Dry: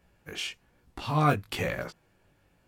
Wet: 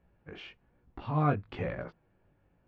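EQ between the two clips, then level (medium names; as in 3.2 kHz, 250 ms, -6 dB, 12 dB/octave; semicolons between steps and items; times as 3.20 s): distance through air 110 m; tape spacing loss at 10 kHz 34 dB; -1.5 dB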